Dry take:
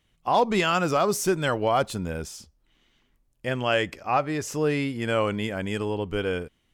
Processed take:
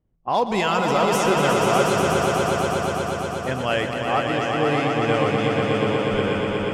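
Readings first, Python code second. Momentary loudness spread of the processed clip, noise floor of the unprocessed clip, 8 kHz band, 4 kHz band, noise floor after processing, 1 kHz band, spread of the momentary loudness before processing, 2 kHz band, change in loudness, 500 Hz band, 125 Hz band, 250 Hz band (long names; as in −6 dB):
6 LU, −69 dBFS, +3.0 dB, +5.0 dB, −29 dBFS, +5.5 dB, 10 LU, +5.0 dB, +4.5 dB, +5.5 dB, +5.5 dB, +5.0 dB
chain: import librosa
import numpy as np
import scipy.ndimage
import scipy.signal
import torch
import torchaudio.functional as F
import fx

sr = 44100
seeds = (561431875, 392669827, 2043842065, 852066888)

y = fx.env_lowpass(x, sr, base_hz=620.0, full_db=-20.0)
y = fx.echo_swell(y, sr, ms=121, loudest=5, wet_db=-5.5)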